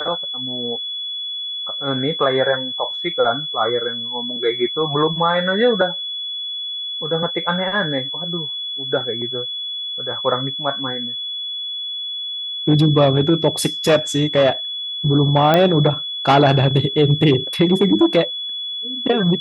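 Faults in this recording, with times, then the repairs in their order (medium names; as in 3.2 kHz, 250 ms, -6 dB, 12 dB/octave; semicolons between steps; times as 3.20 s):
whine 3.4 kHz -24 dBFS
15.54 s: pop -3 dBFS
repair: de-click; band-stop 3.4 kHz, Q 30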